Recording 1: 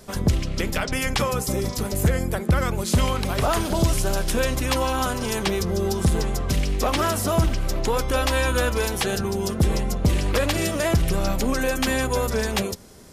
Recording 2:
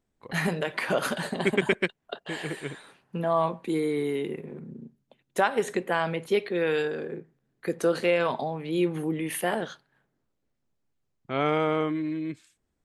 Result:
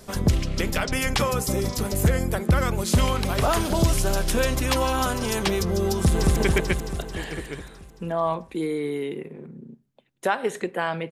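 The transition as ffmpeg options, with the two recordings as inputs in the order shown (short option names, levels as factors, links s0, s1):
-filter_complex "[0:a]apad=whole_dur=11.11,atrim=end=11.11,atrim=end=6.362[s0];[1:a]atrim=start=1.488:end=6.24[s1];[s0][s1]acrossfade=d=0.004:c1=hsin:c2=hsin,asplit=2[s2][s3];[s3]afade=t=in:st=5.99:d=0.01,afade=t=out:st=6.36:d=0.01,aecho=0:1:220|440|660|880|1100|1320|1540|1760|1980|2200|2420:0.841395|0.546907|0.355489|0.231068|0.150194|0.0976263|0.0634571|0.0412471|0.0268106|0.0174269|0.0113275[s4];[s2][s4]amix=inputs=2:normalize=0"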